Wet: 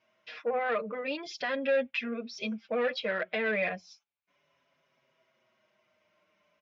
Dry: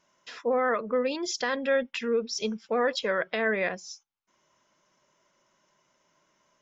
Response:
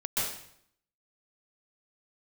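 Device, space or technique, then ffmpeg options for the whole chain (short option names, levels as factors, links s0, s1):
barber-pole flanger into a guitar amplifier: -filter_complex "[0:a]asplit=2[s0][s1];[s1]adelay=5.9,afreqshift=-0.35[s2];[s0][s2]amix=inputs=2:normalize=1,asoftclip=type=tanh:threshold=0.075,highpass=86,equalizer=f=87:t=q:w=4:g=7,equalizer=f=330:t=q:w=4:g=-4,equalizer=f=650:t=q:w=4:g=6,equalizer=f=940:t=q:w=4:g=-5,equalizer=f=2400:t=q:w=4:g=8,lowpass=f=4400:w=0.5412,lowpass=f=4400:w=1.3066"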